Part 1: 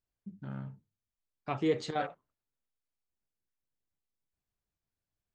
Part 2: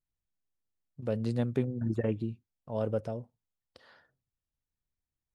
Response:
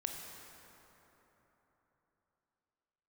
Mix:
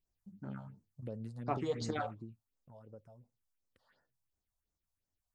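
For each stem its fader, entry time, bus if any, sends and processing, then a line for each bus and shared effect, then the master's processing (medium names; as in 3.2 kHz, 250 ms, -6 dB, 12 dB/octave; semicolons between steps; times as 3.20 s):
+1.0 dB, 0.00 s, no send, peaking EQ 140 Hz -7 dB 0.77 oct
2.07 s -1 dB -> 2.48 s -11 dB, 0.00 s, no send, compression 6:1, threshold -39 dBFS, peak gain reduction 15 dB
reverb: none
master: phase shifter stages 4, 2.8 Hz, lowest notch 310–3400 Hz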